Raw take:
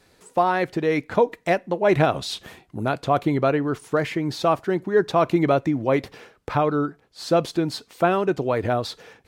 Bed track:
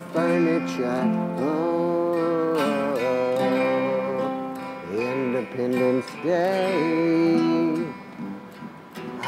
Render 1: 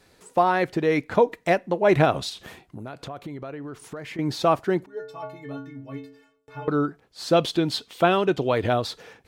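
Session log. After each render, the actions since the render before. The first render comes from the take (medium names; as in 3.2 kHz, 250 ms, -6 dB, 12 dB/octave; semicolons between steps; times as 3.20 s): 2.29–4.19 s: compression 5:1, threshold -34 dBFS; 4.86–6.68 s: inharmonic resonator 130 Hz, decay 0.79 s, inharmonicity 0.03; 7.33–8.82 s: peaking EQ 3.3 kHz +10 dB 0.6 oct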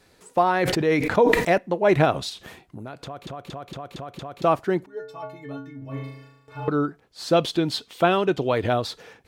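0.54–1.58 s: decay stretcher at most 37 dB/s; 3.04 s: stutter in place 0.23 s, 6 plays; 5.78–6.69 s: flutter echo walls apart 6.4 m, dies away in 0.91 s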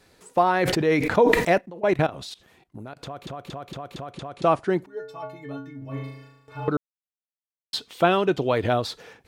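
1.61–2.97 s: level held to a coarse grid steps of 19 dB; 4.13–4.73 s: brick-wall FIR low-pass 11 kHz; 6.77–7.73 s: mute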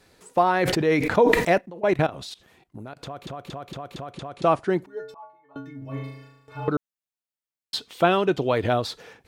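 5.14–5.56 s: band-pass filter 940 Hz, Q 6.9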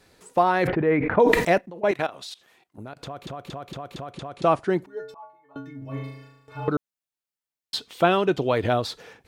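0.67–1.20 s: low-pass 2.2 kHz 24 dB/octave; 1.91–2.78 s: high-pass 690 Hz 6 dB/octave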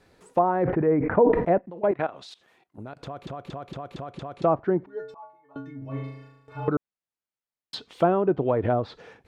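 low-pass that closes with the level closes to 1 kHz, closed at -17.5 dBFS; treble shelf 2.9 kHz -9.5 dB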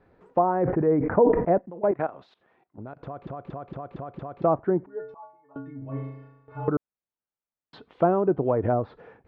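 low-pass 1.5 kHz 12 dB/octave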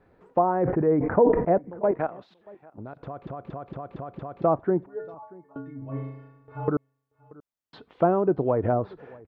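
delay 633 ms -23.5 dB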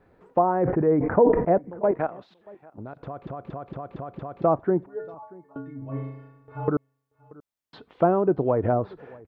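trim +1 dB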